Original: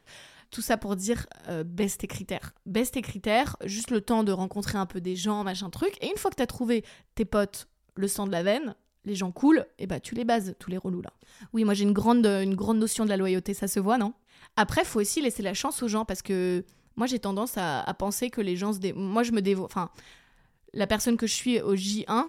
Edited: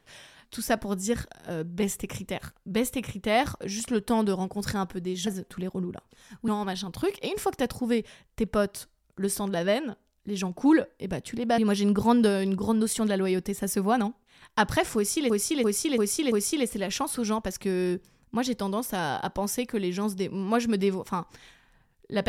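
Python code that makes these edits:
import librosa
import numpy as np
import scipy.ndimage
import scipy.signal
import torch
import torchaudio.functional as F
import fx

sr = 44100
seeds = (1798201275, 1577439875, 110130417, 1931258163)

y = fx.edit(x, sr, fx.move(start_s=10.37, length_s=1.21, to_s=5.27),
    fx.repeat(start_s=14.96, length_s=0.34, count=5), tone=tone)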